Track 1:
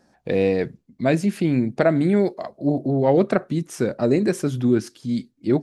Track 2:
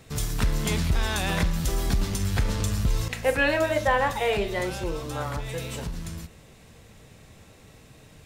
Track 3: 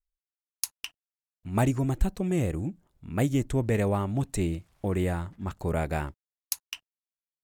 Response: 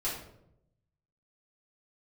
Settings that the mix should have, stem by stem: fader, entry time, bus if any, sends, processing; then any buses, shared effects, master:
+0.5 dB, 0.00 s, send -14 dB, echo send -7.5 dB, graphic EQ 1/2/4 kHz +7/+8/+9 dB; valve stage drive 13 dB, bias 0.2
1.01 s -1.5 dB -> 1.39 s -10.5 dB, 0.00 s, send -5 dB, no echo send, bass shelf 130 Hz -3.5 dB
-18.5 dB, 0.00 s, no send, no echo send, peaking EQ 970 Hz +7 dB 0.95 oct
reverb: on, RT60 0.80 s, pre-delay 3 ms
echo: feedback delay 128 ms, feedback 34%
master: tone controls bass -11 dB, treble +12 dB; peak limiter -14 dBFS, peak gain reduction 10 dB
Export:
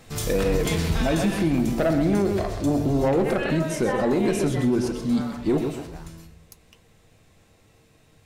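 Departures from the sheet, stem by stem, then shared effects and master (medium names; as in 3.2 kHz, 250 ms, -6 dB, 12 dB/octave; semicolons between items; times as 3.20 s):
stem 1: missing graphic EQ 1/2/4 kHz +7/+8/+9 dB; master: missing tone controls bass -11 dB, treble +12 dB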